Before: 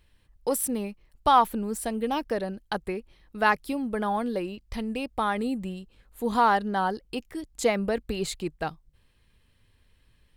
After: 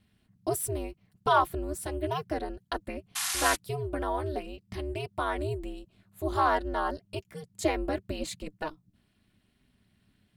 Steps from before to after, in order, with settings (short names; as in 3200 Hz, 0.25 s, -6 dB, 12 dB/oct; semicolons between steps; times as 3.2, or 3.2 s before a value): painted sound noise, 3.15–3.56, 850–12000 Hz -27 dBFS; notch comb 350 Hz; ring modulator 150 Hz